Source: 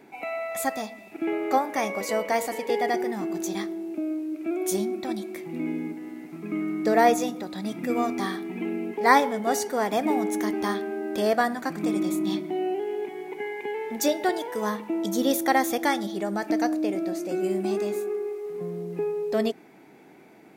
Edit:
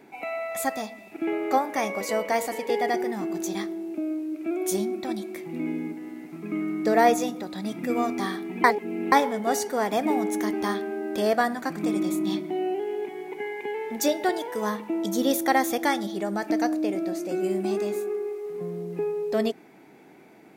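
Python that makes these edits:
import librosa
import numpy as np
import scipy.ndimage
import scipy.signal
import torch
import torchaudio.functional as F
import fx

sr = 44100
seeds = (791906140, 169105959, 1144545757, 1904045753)

y = fx.edit(x, sr, fx.reverse_span(start_s=8.64, length_s=0.48), tone=tone)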